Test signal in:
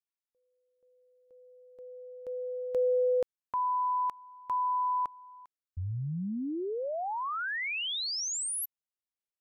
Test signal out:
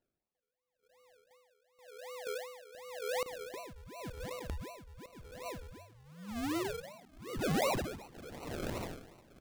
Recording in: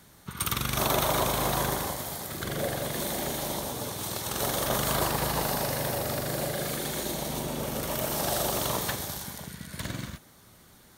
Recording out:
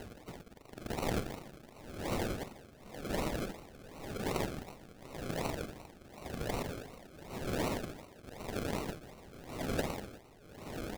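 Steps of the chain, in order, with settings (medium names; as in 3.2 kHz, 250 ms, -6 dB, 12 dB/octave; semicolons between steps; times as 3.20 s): elliptic low-pass 6.1 kHz, stop band 40 dB; integer overflow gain 23.5 dB; high-pass 1.1 kHz 6 dB/octave; treble shelf 2.4 kHz +11.5 dB; static phaser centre 2 kHz, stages 4; doubling 34 ms -14 dB; compression 6:1, threshold -43 dBFS; on a send: echo that smears into a reverb 718 ms, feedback 68%, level -8 dB; on the sum: decimation with a swept rate 37×, swing 60% 2.7 Hz; saturation -36 dBFS; logarithmic tremolo 0.92 Hz, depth 20 dB; trim +14 dB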